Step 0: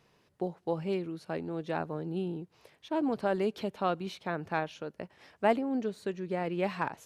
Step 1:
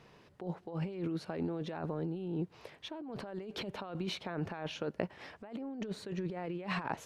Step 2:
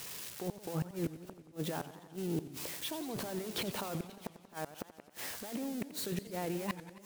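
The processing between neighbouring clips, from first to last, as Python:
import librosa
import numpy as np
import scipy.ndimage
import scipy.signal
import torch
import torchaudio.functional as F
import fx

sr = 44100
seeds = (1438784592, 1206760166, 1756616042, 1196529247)

y1 = fx.high_shelf(x, sr, hz=6700.0, db=-12.0)
y1 = fx.over_compress(y1, sr, threshold_db=-40.0, ratio=-1.0)
y1 = y1 * 10.0 ** (1.0 / 20.0)
y2 = y1 + 0.5 * 10.0 ** (-35.0 / 20.0) * np.diff(np.sign(y1), prepend=np.sign(y1[:1]))
y2 = fx.gate_flip(y2, sr, shuts_db=-27.0, range_db=-41)
y2 = fx.echo_warbled(y2, sr, ms=88, feedback_pct=71, rate_hz=2.8, cents=212, wet_db=-14.0)
y2 = y2 * 10.0 ** (2.5 / 20.0)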